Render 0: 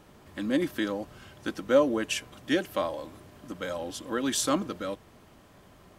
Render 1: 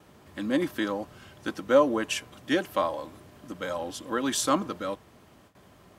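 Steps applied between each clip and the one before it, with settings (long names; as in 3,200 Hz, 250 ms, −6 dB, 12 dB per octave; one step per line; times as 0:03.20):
noise gate with hold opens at −46 dBFS
high-pass filter 55 Hz
dynamic equaliser 1,000 Hz, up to +6 dB, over −43 dBFS, Q 1.5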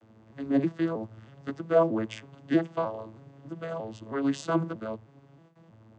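vocoder with an arpeggio as carrier major triad, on A2, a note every 316 ms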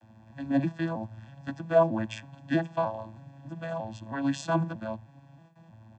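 comb filter 1.2 ms, depth 90%
level −1 dB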